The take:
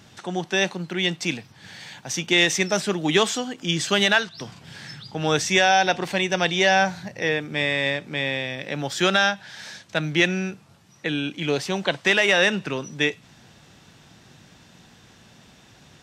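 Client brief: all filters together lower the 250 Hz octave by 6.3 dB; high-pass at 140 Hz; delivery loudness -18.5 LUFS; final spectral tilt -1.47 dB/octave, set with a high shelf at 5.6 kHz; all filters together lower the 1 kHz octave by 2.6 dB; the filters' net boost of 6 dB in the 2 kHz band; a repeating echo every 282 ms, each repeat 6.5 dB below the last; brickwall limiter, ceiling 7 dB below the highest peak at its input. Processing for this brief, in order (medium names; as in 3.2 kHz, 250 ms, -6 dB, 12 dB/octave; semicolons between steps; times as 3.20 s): high-pass 140 Hz; peaking EQ 250 Hz -9 dB; peaking EQ 1 kHz -5.5 dB; peaking EQ 2 kHz +8.5 dB; treble shelf 5.6 kHz +3.5 dB; peak limiter -7.5 dBFS; feedback delay 282 ms, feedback 47%, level -6.5 dB; trim +1.5 dB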